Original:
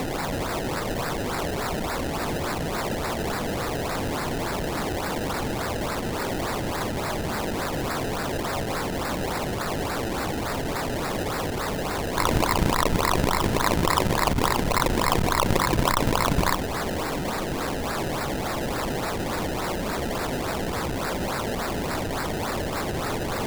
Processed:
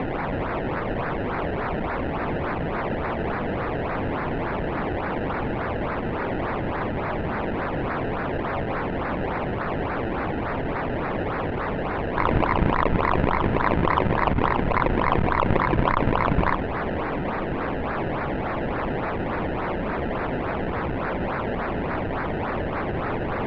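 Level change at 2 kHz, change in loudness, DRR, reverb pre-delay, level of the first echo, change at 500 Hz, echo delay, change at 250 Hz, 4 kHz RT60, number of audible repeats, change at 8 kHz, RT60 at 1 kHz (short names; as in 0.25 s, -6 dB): +1.0 dB, +0.5 dB, none, none, none, +1.5 dB, none, +1.5 dB, none, none, under -35 dB, none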